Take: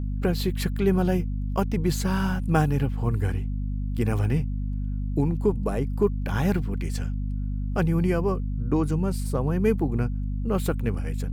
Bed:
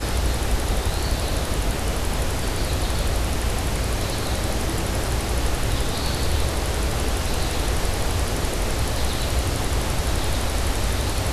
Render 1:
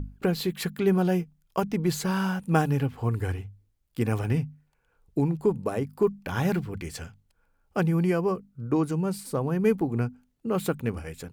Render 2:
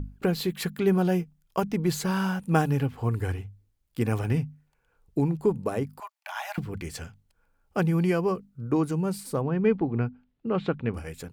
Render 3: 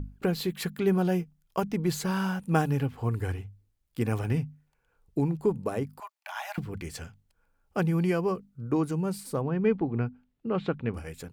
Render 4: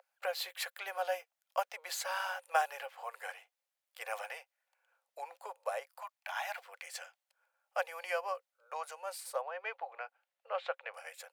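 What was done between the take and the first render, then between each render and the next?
notches 50/100/150/200/250 Hz
6–6.58 rippled Chebyshev high-pass 620 Hz, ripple 3 dB; 7.88–8.45 bell 3600 Hz +4 dB 1.4 oct; 9.41–10.94 LPF 3800 Hz 24 dB/oct
gain -2 dB
rippled Chebyshev high-pass 520 Hz, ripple 3 dB

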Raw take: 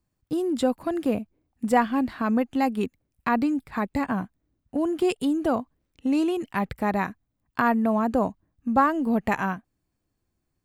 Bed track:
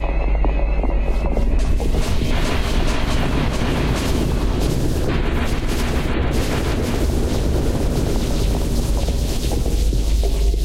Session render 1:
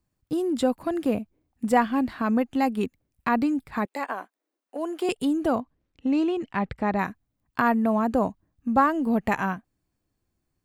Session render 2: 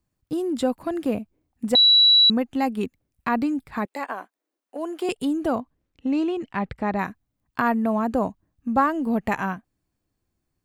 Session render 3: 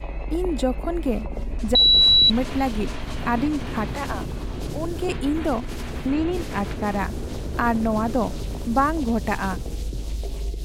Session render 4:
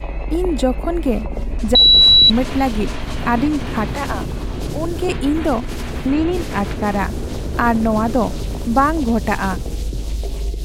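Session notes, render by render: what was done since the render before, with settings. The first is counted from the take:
3.85–5.09 HPF 390 Hz 24 dB/oct; 5.6–6.99 air absorption 100 m
1.75–2.3 bleep 3920 Hz -11.5 dBFS
add bed track -11 dB
gain +5.5 dB; limiter -3 dBFS, peak gain reduction 0.5 dB

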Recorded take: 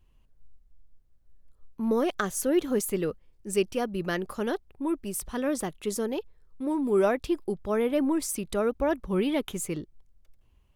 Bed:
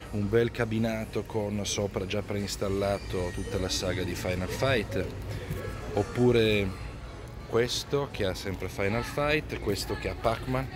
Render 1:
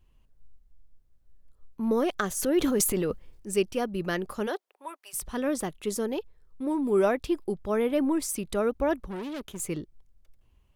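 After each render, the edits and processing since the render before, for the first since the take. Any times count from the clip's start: 2.28–3.51 transient shaper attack -1 dB, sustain +10 dB; 4.46–5.13 HPF 340 Hz -> 860 Hz 24 dB/oct; 9.08–9.6 tube stage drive 33 dB, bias 0.65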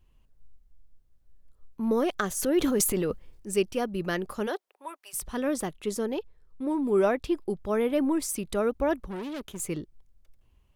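5.72–7.5 high shelf 7300 Hz -5 dB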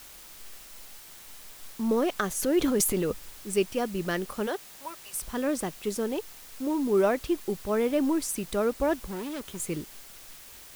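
requantised 8-bit, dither triangular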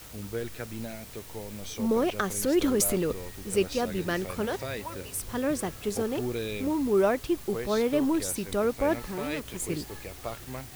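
add bed -9.5 dB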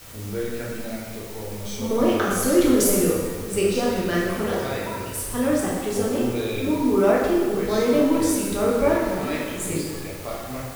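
plate-style reverb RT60 1.6 s, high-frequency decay 0.75×, DRR -5 dB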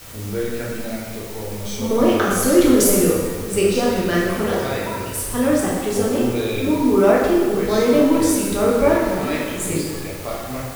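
gain +4 dB

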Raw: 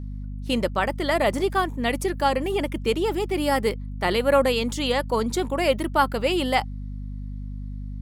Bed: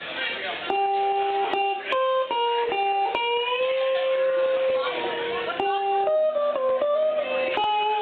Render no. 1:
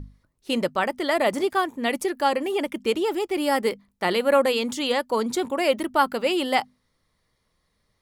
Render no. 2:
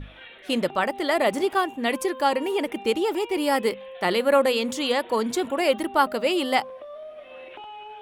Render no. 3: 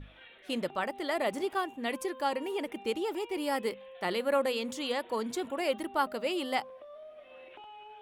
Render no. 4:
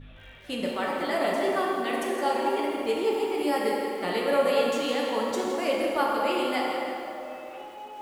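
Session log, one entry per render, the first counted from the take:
notches 50/100/150/200/250 Hz
add bed -17 dB
gain -9 dB
plate-style reverb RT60 3.2 s, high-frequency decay 0.55×, DRR -3.5 dB; lo-fi delay 0.164 s, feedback 35%, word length 8-bit, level -10.5 dB

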